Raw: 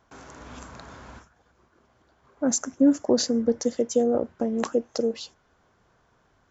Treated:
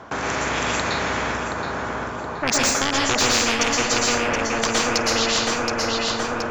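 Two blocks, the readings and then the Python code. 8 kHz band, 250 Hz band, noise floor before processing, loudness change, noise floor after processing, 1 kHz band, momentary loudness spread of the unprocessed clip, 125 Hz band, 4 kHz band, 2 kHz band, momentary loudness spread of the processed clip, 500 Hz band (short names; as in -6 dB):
n/a, -2.0 dB, -66 dBFS, +3.5 dB, -30 dBFS, +17.0 dB, 21 LU, +13.0 dB, +16.5 dB, +24.0 dB, 8 LU, +1.5 dB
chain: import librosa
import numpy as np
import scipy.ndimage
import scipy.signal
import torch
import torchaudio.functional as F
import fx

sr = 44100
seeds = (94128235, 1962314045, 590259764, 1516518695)

y = fx.rattle_buzz(x, sr, strikes_db=-27.0, level_db=-19.0)
y = fx.highpass(y, sr, hz=230.0, slope=6)
y = fx.fold_sine(y, sr, drive_db=8, ceiling_db=-9.5)
y = fx.lowpass(y, sr, hz=1800.0, slope=6)
y = fx.echo_feedback(y, sr, ms=723, feedback_pct=38, wet_db=-10.0)
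y = fx.rev_plate(y, sr, seeds[0], rt60_s=0.56, hf_ratio=0.65, predelay_ms=105, drr_db=-6.0)
y = fx.rider(y, sr, range_db=10, speed_s=2.0)
y = fx.spectral_comp(y, sr, ratio=4.0)
y = y * librosa.db_to_amplitude(-9.0)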